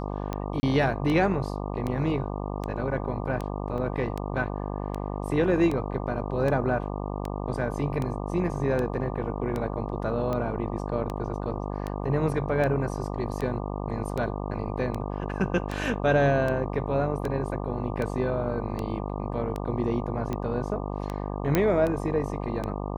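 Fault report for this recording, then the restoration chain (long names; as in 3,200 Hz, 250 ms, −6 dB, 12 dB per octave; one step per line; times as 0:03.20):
mains buzz 50 Hz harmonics 24 −32 dBFS
scratch tick 78 rpm −18 dBFS
0:00.60–0:00.63: drop-out 30 ms
0:03.78: drop-out 2.3 ms
0:21.55: click −8 dBFS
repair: click removal
hum removal 50 Hz, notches 24
repair the gap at 0:00.60, 30 ms
repair the gap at 0:03.78, 2.3 ms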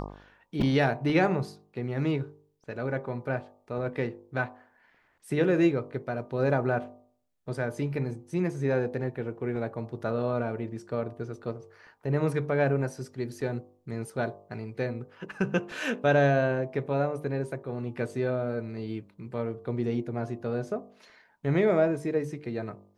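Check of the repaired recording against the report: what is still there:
none of them is left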